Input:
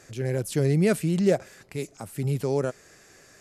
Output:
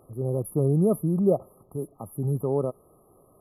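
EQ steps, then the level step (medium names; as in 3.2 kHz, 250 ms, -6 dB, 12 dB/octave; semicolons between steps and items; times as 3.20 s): brick-wall FIR band-stop 1.3–9.8 kHz; 0.0 dB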